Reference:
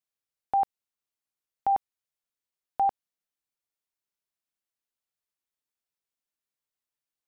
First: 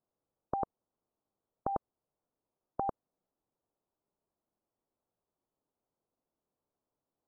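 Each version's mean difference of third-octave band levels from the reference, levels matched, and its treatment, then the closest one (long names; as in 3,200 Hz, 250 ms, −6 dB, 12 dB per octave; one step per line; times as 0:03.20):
8.0 dB: Gaussian smoothing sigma 10 samples
low-shelf EQ 160 Hz −7.5 dB
every bin compressed towards the loudest bin 2 to 1
level +6 dB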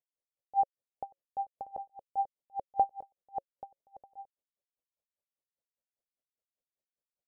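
5.5 dB: drawn EQ curve 350 Hz 0 dB, 550 Hz +10 dB, 1,300 Hz −13 dB
on a send: bouncing-ball delay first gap 490 ms, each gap 0.7×, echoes 5
on the sum: tremolo with a sine in dB 5 Hz, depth 35 dB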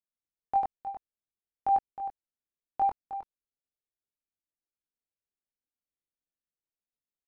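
2.0 dB: adaptive Wiener filter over 41 samples
multi-voice chorus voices 6, 0.37 Hz, delay 22 ms, depth 2.8 ms
on a send: single-tap delay 313 ms −11 dB
on the sum: level +1.5 dB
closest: third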